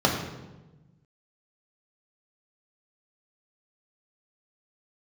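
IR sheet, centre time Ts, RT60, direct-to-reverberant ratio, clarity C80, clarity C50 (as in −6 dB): 38 ms, 1.1 s, −0.5 dB, 6.5 dB, 5.0 dB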